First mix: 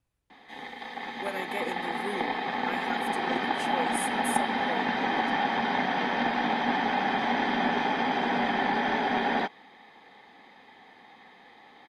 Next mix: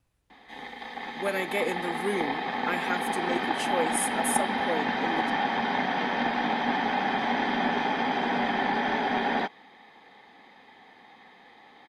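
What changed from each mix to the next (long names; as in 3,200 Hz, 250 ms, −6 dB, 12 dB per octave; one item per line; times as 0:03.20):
speech +6.5 dB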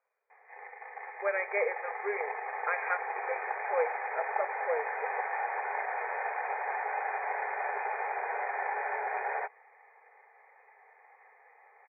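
background −5.5 dB
master: add linear-phase brick-wall band-pass 400–2,500 Hz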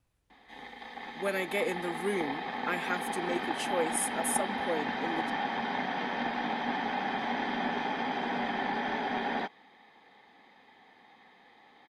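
speech: send −11.5 dB
master: remove linear-phase brick-wall band-pass 400–2,500 Hz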